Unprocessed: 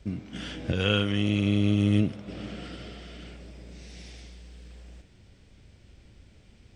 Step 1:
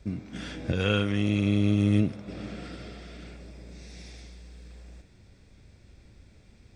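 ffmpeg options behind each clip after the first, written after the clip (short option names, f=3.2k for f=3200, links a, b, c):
-af "bandreject=f=3k:w=6"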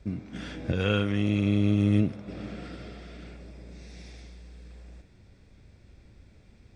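-af "highshelf=f=4.1k:g=-6"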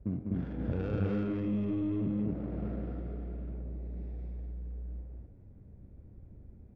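-filter_complex "[0:a]alimiter=limit=-23.5dB:level=0:latency=1:release=64,adynamicsmooth=sensitivity=1.5:basefreq=560,asplit=2[a][b];[b]aecho=0:1:198.3|250.7:0.562|0.891[c];[a][c]amix=inputs=2:normalize=0"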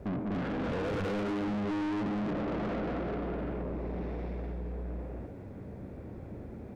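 -filter_complex "[0:a]asplit=2[a][b];[b]highpass=f=720:p=1,volume=38dB,asoftclip=type=tanh:threshold=-19dB[c];[a][c]amix=inputs=2:normalize=0,lowpass=f=3.1k:p=1,volume=-6dB,volume=-7dB"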